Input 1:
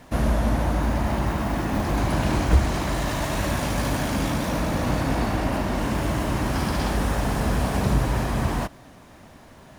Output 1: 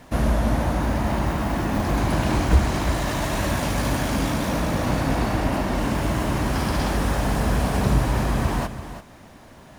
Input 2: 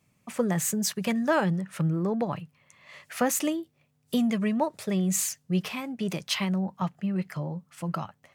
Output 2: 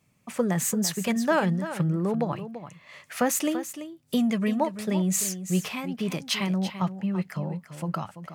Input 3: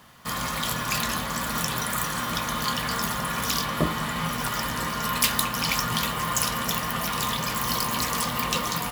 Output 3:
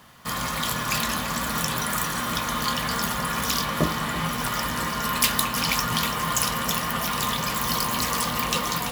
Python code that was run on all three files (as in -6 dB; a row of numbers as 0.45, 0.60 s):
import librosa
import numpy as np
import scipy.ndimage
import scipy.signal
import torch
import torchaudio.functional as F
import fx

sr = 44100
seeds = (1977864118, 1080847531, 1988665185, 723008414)

y = x + 10.0 ** (-11.5 / 20.0) * np.pad(x, (int(337 * sr / 1000.0), 0))[:len(x)]
y = y * 10.0 ** (1.0 / 20.0)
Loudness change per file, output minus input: +1.0, +1.0, +1.5 LU